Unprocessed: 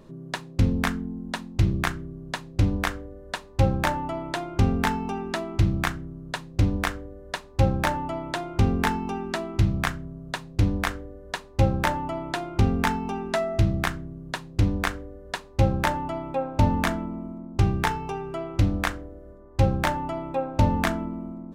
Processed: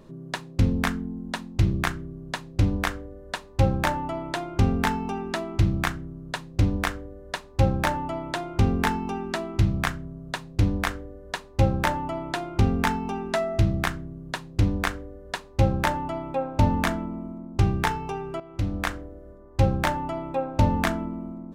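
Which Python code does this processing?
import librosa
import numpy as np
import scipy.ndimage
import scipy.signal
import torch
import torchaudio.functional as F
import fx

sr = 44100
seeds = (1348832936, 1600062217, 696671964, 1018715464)

y = fx.edit(x, sr, fx.fade_in_from(start_s=18.4, length_s=0.57, floor_db=-13.5), tone=tone)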